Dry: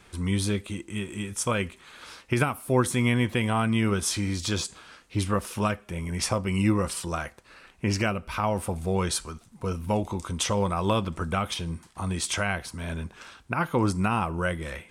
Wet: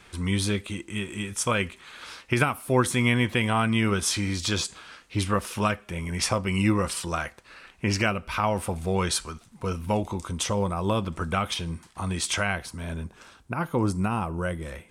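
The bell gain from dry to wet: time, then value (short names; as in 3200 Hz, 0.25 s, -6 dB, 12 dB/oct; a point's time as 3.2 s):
bell 2500 Hz 2.7 oct
9.79 s +4 dB
10.84 s -5.5 dB
11.23 s +2.5 dB
12.4 s +2.5 dB
13.11 s -5.5 dB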